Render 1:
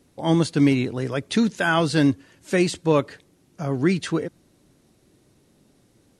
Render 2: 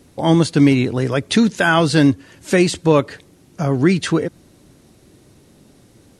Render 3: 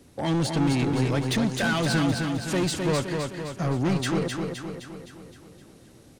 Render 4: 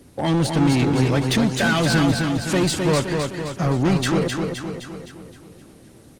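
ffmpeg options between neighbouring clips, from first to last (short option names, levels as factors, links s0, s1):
-filter_complex "[0:a]equalizer=f=79:w=1.5:g=3,asplit=2[s0][s1];[s1]acompressor=threshold=0.0447:ratio=6,volume=1.12[s2];[s0][s2]amix=inputs=2:normalize=0,volume=1.41"
-filter_complex "[0:a]acrossover=split=120[s0][s1];[s1]asoftclip=type=tanh:threshold=0.112[s2];[s0][s2]amix=inputs=2:normalize=0,aecho=1:1:259|518|777|1036|1295|1554|1813:0.596|0.328|0.18|0.0991|0.0545|0.03|0.0165,volume=0.631"
-af "volume=1.88" -ar 48000 -c:a libopus -b:a 24k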